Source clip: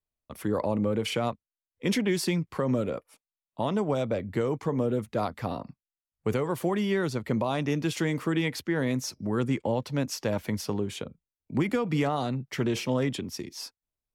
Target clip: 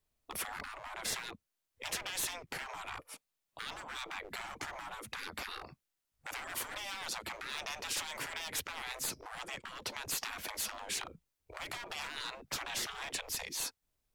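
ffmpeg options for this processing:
-af "acompressor=threshold=-29dB:ratio=8,aeval=exprs='clip(val(0),-1,0.0211)':c=same,afftfilt=real='re*lt(hypot(re,im),0.0178)':imag='im*lt(hypot(re,im),0.0178)':win_size=1024:overlap=0.75,volume=8.5dB"

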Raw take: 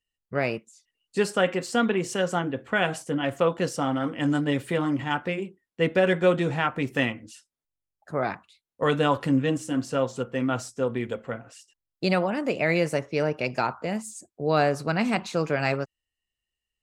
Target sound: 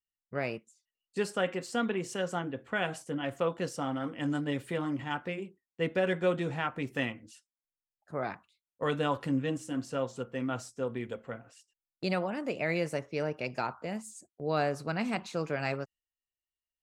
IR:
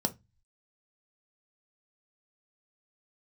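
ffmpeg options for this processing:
-af "agate=range=-7dB:threshold=-48dB:ratio=16:detection=peak,volume=-7.5dB"

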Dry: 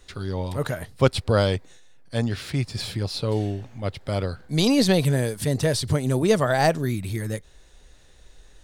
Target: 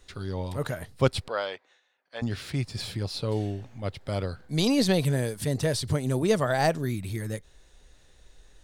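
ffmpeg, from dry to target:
-filter_complex "[0:a]asettb=1/sr,asplit=3[a][b][c];[a]atrim=end=1.284[d];[b]atrim=start=1.28:end=2.22,asetpts=PTS-STARTPTS,afade=t=in:d=0.004:c=qsin,afade=t=out:st=0.936:d=0.004:c=qsin,highpass=690,lowpass=3.1k[e];[c]atrim=start=2.216[f];[d][e]acrossfade=d=0.004:c1=hsin:c2=qsin[g];[g][f]acrossfade=d=0.004:c1=qsin:c2=hsin,volume=-4dB"

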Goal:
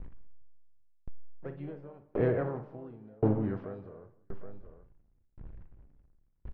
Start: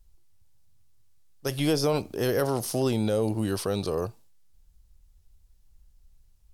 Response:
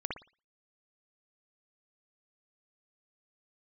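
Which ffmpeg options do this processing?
-filter_complex "[0:a]aeval=exprs='val(0)+0.5*0.0106*sgn(val(0))':c=same,lowpass=f=1.8k:w=0.5412,lowpass=f=1.8k:w=1.3066,asplit=2[a][b];[b]asetrate=55563,aresample=44100,atempo=0.793701,volume=-9dB[c];[a][c]amix=inputs=2:normalize=0,lowshelf=f=320:g=4,aecho=1:1:42|184|774:0.299|0.211|0.141,asplit=2[d][e];[1:a]atrim=start_sample=2205[f];[e][f]afir=irnorm=-1:irlink=0,volume=-10dB[g];[d][g]amix=inputs=2:normalize=0,aeval=exprs='val(0)*pow(10,-35*if(lt(mod(0.93*n/s,1),2*abs(0.93)/1000),1-mod(0.93*n/s,1)/(2*abs(0.93)/1000),(mod(0.93*n/s,1)-2*abs(0.93)/1000)/(1-2*abs(0.93)/1000))/20)':c=same,volume=-3dB"

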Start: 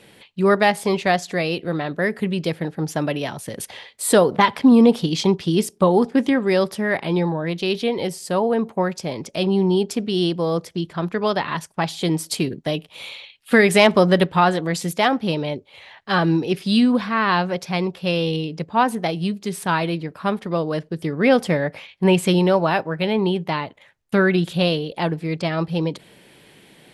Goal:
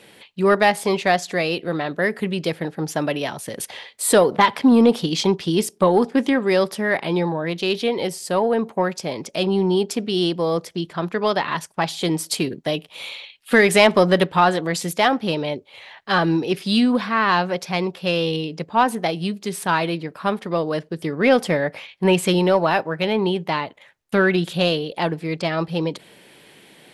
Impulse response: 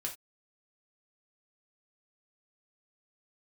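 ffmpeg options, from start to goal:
-filter_complex "[0:a]lowshelf=f=160:g=-9.5,asplit=2[a][b];[b]asoftclip=type=tanh:threshold=-13.5dB,volume=-7.5dB[c];[a][c]amix=inputs=2:normalize=0,volume=-1dB"

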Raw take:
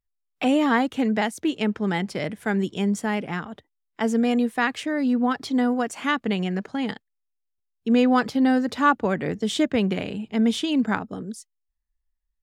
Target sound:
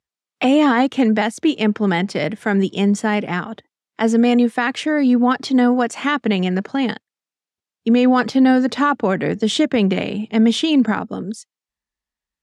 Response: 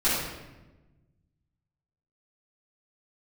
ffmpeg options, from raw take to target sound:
-af "alimiter=limit=-14dB:level=0:latency=1:release=32,highpass=130,lowpass=7.8k,volume=7.5dB"

